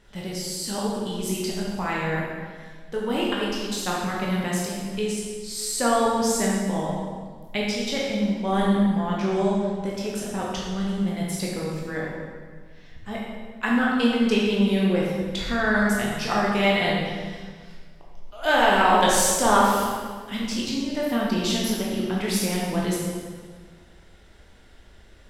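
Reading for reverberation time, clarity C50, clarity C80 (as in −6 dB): 1.7 s, −0.5 dB, 1.5 dB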